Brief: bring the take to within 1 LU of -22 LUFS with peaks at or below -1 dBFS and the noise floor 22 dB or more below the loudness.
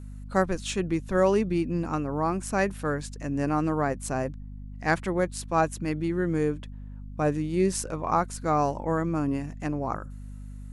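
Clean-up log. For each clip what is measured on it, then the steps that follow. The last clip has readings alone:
hum 50 Hz; highest harmonic 250 Hz; hum level -38 dBFS; loudness -27.5 LUFS; peak level -9.5 dBFS; loudness target -22.0 LUFS
-> de-hum 50 Hz, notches 5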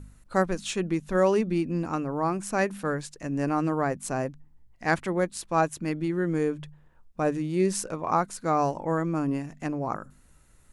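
hum not found; loudness -28.0 LUFS; peak level -9.5 dBFS; loudness target -22.0 LUFS
-> trim +6 dB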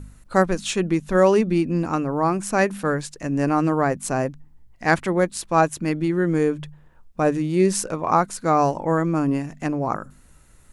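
loudness -22.0 LUFS; peak level -3.5 dBFS; noise floor -52 dBFS

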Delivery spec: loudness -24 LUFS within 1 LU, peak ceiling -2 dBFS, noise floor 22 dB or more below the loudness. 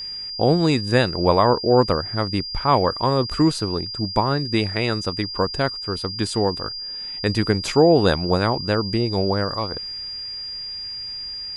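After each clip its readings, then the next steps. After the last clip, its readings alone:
tick rate 47 per s; steady tone 4.8 kHz; tone level -29 dBFS; loudness -21.5 LUFS; peak level -1.5 dBFS; loudness target -24.0 LUFS
-> de-click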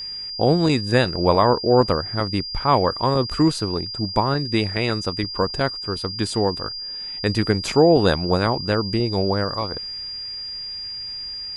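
tick rate 0.086 per s; steady tone 4.8 kHz; tone level -29 dBFS
-> band-stop 4.8 kHz, Q 30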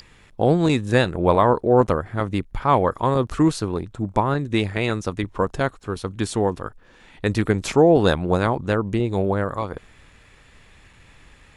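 steady tone not found; loudness -21.5 LUFS; peak level -1.5 dBFS; loudness target -24.0 LUFS
-> trim -2.5 dB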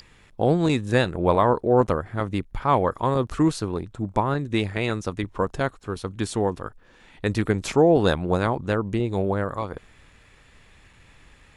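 loudness -24.0 LUFS; peak level -4.0 dBFS; noise floor -54 dBFS

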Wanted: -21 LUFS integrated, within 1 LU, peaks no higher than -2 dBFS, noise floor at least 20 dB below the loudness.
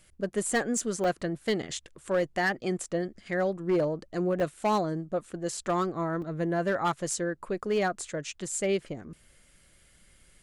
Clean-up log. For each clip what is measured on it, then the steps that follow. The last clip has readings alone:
clipped samples 0.8%; clipping level -20.5 dBFS; dropouts 4; longest dropout 2.9 ms; loudness -30.0 LUFS; peak level -20.5 dBFS; loudness target -21.0 LUFS
-> clip repair -20.5 dBFS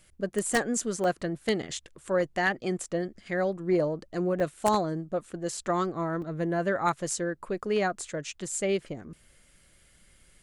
clipped samples 0.0%; dropouts 4; longest dropout 2.9 ms
-> interpolate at 1.04/4.40/6.22/7.99 s, 2.9 ms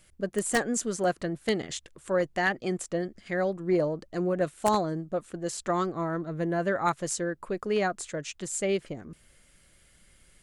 dropouts 0; loudness -29.5 LUFS; peak level -11.5 dBFS; loudness target -21.0 LUFS
-> trim +8.5 dB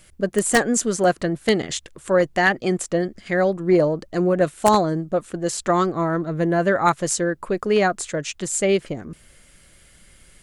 loudness -21.0 LUFS; peak level -3.0 dBFS; noise floor -53 dBFS

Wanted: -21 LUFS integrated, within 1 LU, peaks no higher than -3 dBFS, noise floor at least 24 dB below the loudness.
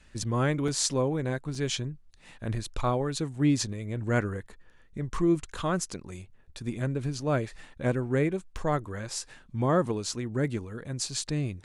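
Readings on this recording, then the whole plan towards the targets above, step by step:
dropouts 3; longest dropout 3.0 ms; loudness -30.0 LUFS; peak level -9.0 dBFS; loudness target -21.0 LUFS
-> interpolate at 0.68/1.55/8.57 s, 3 ms; trim +9 dB; peak limiter -3 dBFS

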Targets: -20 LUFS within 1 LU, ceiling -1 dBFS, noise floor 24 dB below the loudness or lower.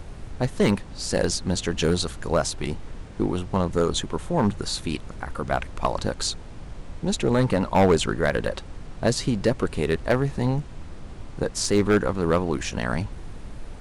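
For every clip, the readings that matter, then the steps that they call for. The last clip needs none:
clipped samples 0.6%; clipping level -12.0 dBFS; noise floor -40 dBFS; noise floor target -49 dBFS; loudness -25.0 LUFS; peak level -12.0 dBFS; loudness target -20.0 LUFS
-> clip repair -12 dBFS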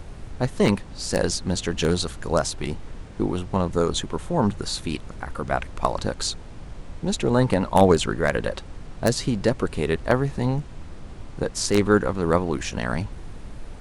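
clipped samples 0.0%; noise floor -40 dBFS; noise floor target -48 dBFS
-> noise print and reduce 8 dB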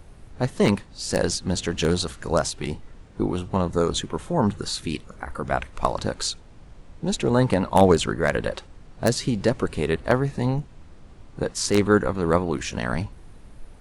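noise floor -47 dBFS; noise floor target -48 dBFS
-> noise print and reduce 6 dB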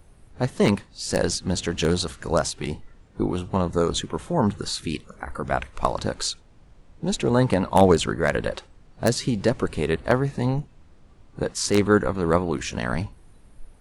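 noise floor -52 dBFS; loudness -24.0 LUFS; peak level -3.0 dBFS; loudness target -20.0 LUFS
-> trim +4 dB; peak limiter -1 dBFS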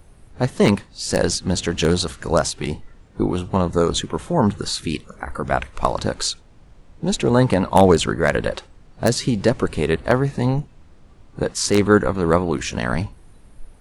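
loudness -20.5 LUFS; peak level -1.0 dBFS; noise floor -48 dBFS

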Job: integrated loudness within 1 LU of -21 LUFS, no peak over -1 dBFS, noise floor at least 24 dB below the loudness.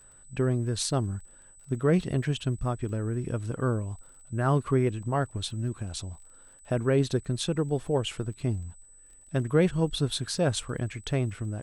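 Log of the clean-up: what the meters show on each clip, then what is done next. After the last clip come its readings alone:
tick rate 25 per s; steady tone 8 kHz; tone level -53 dBFS; loudness -29.0 LUFS; peak level -11.5 dBFS; loudness target -21.0 LUFS
-> de-click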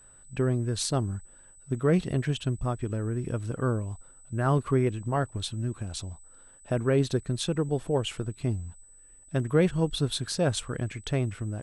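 tick rate 0 per s; steady tone 8 kHz; tone level -53 dBFS
-> band-stop 8 kHz, Q 30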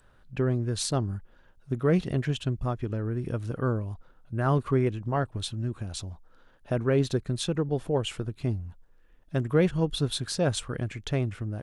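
steady tone not found; loudness -29.0 LUFS; peak level -11.5 dBFS; loudness target -21.0 LUFS
-> trim +8 dB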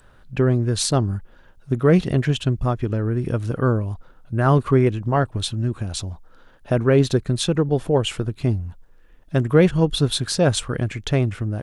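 loudness -21.0 LUFS; peak level -3.5 dBFS; noise floor -51 dBFS

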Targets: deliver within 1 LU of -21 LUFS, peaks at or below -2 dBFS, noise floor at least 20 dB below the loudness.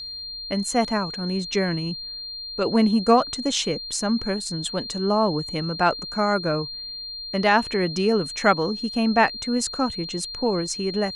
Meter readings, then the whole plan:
steady tone 4.2 kHz; tone level -32 dBFS; loudness -23.5 LUFS; peak level -5.0 dBFS; loudness target -21.0 LUFS
-> band-stop 4.2 kHz, Q 30; trim +2.5 dB

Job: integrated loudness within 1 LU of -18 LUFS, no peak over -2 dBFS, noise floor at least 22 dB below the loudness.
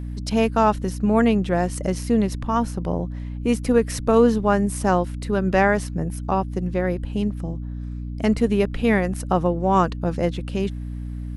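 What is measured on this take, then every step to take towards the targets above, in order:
hum 60 Hz; highest harmonic 300 Hz; hum level -28 dBFS; loudness -22.0 LUFS; peak level -4.5 dBFS; loudness target -18.0 LUFS
-> hum notches 60/120/180/240/300 Hz; trim +4 dB; peak limiter -2 dBFS

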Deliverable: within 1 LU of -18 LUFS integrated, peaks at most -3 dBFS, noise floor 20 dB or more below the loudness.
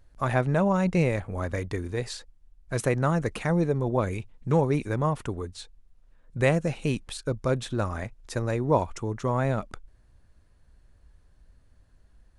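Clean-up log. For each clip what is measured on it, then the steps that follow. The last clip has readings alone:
loudness -27.5 LUFS; peak level -9.0 dBFS; loudness target -18.0 LUFS
-> trim +9.5 dB; peak limiter -3 dBFS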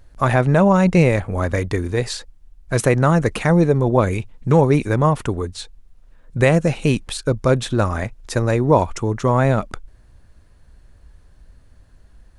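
loudness -18.5 LUFS; peak level -3.0 dBFS; noise floor -51 dBFS

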